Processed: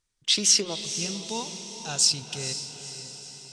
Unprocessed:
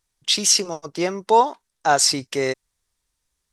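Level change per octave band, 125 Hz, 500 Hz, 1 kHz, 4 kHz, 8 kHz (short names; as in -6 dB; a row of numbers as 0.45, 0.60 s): -2.0, -14.5, -20.5, -2.0, -2.5 dB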